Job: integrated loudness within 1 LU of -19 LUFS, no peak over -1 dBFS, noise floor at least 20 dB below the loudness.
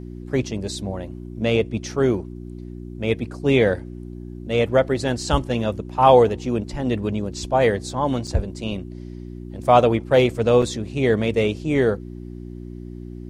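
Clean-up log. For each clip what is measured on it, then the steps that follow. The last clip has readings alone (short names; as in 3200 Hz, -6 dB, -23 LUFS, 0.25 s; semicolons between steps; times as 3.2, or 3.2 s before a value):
dropouts 2; longest dropout 5.1 ms; hum 60 Hz; harmonics up to 360 Hz; hum level -33 dBFS; loudness -21.0 LUFS; peak -1.5 dBFS; loudness target -19.0 LUFS
-> interpolate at 8.27/10.62, 5.1 ms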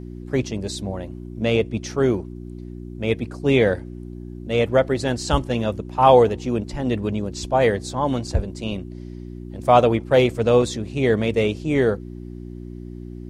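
dropouts 0; hum 60 Hz; harmonics up to 360 Hz; hum level -33 dBFS
-> de-hum 60 Hz, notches 6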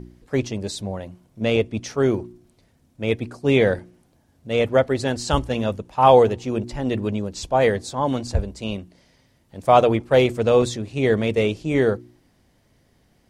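hum none; loudness -21.5 LUFS; peak -1.5 dBFS; loudness target -19.0 LUFS
-> gain +2.5 dB; limiter -1 dBFS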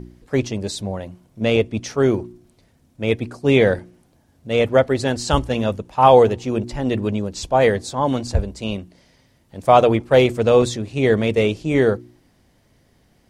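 loudness -19.0 LUFS; peak -1.0 dBFS; noise floor -59 dBFS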